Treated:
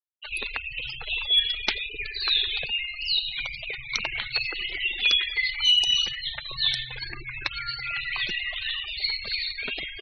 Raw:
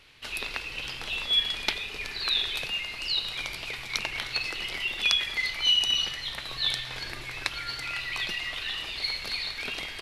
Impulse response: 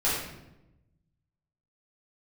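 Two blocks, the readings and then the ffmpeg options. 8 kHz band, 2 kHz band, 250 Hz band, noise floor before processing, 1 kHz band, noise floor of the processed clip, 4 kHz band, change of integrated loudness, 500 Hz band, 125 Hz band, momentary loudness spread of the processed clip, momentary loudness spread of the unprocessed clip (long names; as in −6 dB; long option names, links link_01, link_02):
−1.5 dB, +3.0 dB, can't be measured, −39 dBFS, −1.0 dB, −39 dBFS, +3.0 dB, +3.0 dB, −1.0 dB, +1.0 dB, 11 LU, 10 LU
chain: -af "aeval=exprs='0.668*(cos(1*acos(clip(val(0)/0.668,-1,1)))-cos(1*PI/2))+0.0335*(cos(2*acos(clip(val(0)/0.668,-1,1)))-cos(2*PI/2))+0.106*(cos(3*acos(clip(val(0)/0.668,-1,1)))-cos(3*PI/2))+0.133*(cos(5*acos(clip(val(0)/0.668,-1,1)))-cos(5*PI/2))':channel_layout=same,aeval=exprs='(mod(2.37*val(0)+1,2)-1)/2.37':channel_layout=same,afftfilt=real='re*gte(hypot(re,im),0.0398)':imag='im*gte(hypot(re,im),0.0398)':win_size=1024:overlap=0.75"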